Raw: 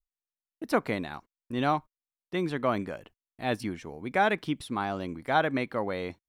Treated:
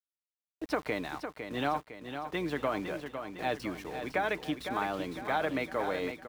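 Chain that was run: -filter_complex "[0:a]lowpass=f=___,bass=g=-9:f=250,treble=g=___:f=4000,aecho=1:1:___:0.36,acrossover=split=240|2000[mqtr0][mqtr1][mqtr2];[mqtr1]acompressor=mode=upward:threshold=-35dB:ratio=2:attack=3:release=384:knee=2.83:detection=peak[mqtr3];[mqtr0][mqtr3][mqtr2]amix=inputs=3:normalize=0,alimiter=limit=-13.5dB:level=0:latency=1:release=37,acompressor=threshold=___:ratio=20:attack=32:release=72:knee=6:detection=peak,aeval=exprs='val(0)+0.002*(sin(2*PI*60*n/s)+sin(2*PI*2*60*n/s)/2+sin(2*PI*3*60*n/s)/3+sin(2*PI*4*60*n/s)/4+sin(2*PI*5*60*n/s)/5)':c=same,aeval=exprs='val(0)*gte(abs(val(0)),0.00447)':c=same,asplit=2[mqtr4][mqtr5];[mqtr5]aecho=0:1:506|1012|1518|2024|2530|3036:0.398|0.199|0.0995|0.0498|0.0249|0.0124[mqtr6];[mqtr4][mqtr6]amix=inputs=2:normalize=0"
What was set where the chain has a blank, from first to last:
6200, -1, 6.6, -30dB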